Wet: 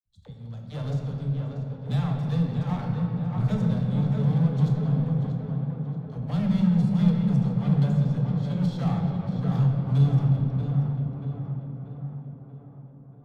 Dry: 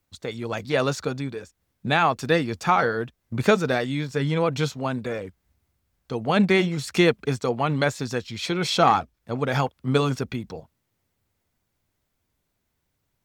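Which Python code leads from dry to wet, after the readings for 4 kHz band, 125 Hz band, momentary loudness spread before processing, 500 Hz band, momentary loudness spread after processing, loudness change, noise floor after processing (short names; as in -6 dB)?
under -15 dB, +7.5 dB, 13 LU, -13.5 dB, 14 LU, -1.5 dB, -46 dBFS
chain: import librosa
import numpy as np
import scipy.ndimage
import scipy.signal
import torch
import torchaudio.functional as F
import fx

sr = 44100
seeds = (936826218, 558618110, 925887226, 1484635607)

p1 = fx.curve_eq(x, sr, hz=(190.0, 370.0, 540.0, 810.0, 1300.0, 2400.0, 3400.0, 5600.0), db=(0, -27, -16, -19, -22, -27, -14, -18))
p2 = fx.fuzz(p1, sr, gain_db=30.0, gate_db=-32.0)
p3 = p1 + (p2 * librosa.db_to_amplitude(-9.5))
p4 = fx.low_shelf(p3, sr, hz=140.0, db=9.5)
p5 = fx.dispersion(p4, sr, late='lows', ms=57.0, hz=340.0)
p6 = p5 + fx.echo_tape(p5, sr, ms=634, feedback_pct=65, wet_db=-3.5, lp_hz=2300.0, drive_db=4.0, wow_cents=26, dry=0)
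p7 = fx.room_shoebox(p6, sr, seeds[0], volume_m3=160.0, walls='hard', distance_m=0.41)
y = p7 * librosa.db_to_amplitude(-8.5)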